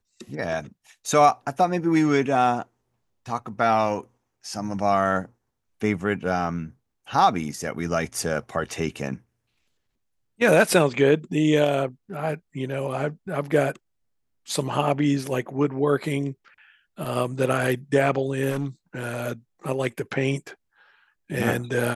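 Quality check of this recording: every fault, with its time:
18.5–18.66 clipped -22 dBFS

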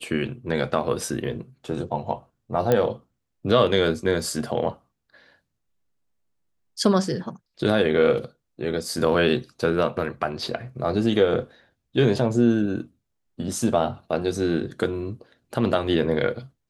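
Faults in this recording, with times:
2.72 pop -8 dBFS

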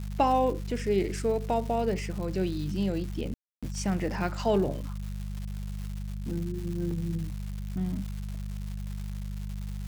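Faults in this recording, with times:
crackle 340/s -37 dBFS
hum 50 Hz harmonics 4 -35 dBFS
3.34–3.63 gap 0.286 s
6.91 gap 2.6 ms

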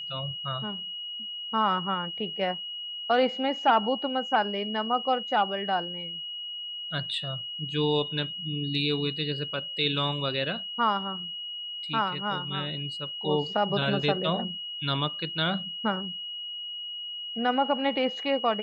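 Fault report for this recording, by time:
tone 2900 Hz -34 dBFS

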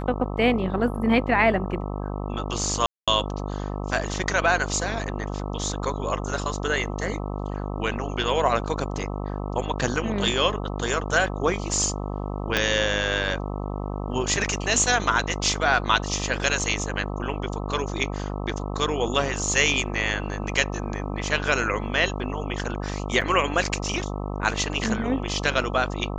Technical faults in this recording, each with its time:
buzz 50 Hz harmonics 26 -30 dBFS
2.86–3.08 gap 0.216 s
12.57 pop -6 dBFS
23.21–23.22 gap 6.3 ms

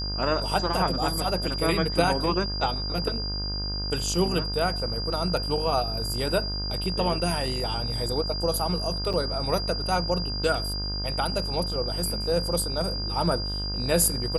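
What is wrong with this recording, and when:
buzz 50 Hz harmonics 33 -32 dBFS
tone 4800 Hz -31 dBFS
9.13–9.14 gap 6.4 ms

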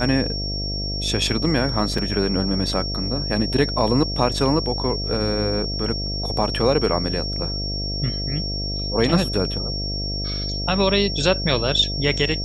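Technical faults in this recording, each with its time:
buzz 50 Hz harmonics 14 -28 dBFS
tone 5500 Hz -27 dBFS
1.98 gap 4 ms

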